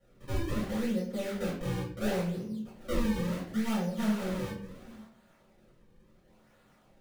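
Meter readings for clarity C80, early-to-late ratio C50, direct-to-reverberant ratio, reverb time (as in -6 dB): 8.5 dB, 4.5 dB, -10.5 dB, 0.60 s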